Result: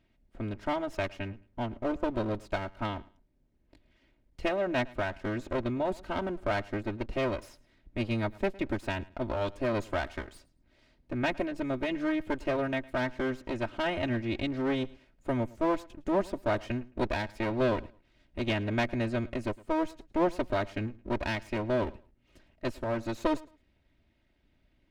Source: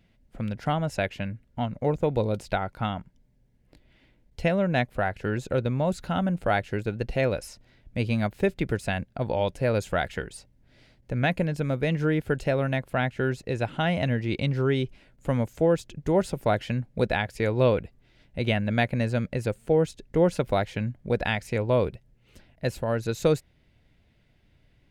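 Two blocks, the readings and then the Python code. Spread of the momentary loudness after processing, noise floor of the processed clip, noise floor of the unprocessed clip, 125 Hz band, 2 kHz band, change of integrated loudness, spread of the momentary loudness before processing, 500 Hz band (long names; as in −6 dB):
7 LU, −69 dBFS, −63 dBFS, −10.0 dB, −4.5 dB, −5.5 dB, 8 LU, −6.0 dB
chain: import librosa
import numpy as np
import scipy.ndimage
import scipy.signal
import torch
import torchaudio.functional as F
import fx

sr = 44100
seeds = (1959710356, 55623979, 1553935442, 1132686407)

p1 = fx.lower_of_two(x, sr, delay_ms=3.2)
p2 = fx.high_shelf(p1, sr, hz=6900.0, db=-10.5)
p3 = p2 + fx.echo_feedback(p2, sr, ms=109, feedback_pct=22, wet_db=-22, dry=0)
y = p3 * librosa.db_to_amplitude(-4.5)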